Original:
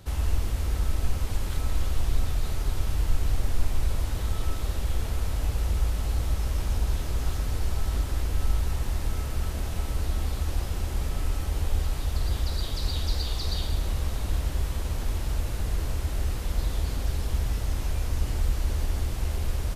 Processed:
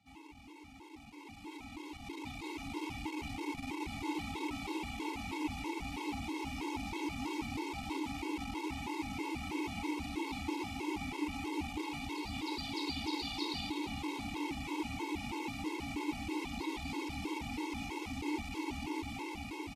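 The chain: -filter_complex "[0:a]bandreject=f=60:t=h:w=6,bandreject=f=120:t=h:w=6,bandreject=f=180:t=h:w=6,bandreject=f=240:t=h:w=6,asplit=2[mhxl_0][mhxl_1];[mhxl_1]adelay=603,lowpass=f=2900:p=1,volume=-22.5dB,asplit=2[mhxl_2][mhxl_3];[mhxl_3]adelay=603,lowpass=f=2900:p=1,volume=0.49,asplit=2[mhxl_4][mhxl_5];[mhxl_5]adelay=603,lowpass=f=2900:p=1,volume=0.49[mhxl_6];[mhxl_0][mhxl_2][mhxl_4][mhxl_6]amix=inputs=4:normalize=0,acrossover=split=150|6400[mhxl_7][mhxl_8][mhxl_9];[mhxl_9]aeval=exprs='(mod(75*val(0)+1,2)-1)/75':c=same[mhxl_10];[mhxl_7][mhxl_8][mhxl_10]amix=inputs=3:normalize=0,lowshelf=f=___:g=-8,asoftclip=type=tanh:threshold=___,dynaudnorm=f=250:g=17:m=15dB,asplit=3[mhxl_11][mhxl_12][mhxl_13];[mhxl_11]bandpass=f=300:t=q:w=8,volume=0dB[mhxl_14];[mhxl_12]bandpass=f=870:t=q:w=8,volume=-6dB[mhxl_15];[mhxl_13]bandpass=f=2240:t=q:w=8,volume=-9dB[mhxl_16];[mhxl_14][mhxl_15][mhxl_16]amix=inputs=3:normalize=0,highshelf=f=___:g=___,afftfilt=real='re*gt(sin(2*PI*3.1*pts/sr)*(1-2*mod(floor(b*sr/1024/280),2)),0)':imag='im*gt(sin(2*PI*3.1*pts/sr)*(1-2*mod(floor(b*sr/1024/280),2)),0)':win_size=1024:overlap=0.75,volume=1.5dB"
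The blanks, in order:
77, -23.5dB, 2700, 11.5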